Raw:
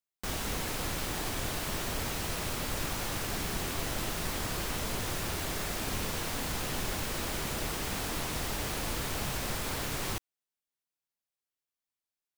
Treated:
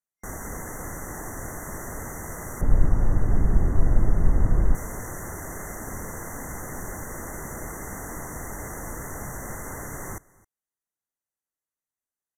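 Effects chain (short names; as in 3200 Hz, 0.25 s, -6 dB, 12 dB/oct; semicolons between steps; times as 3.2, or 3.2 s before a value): FFT band-reject 2100–5700 Hz; 2.61–4.75 tilt -4.5 dB/oct; on a send: echo 0.265 s -23.5 dB; on the sum: downsampling 32000 Hz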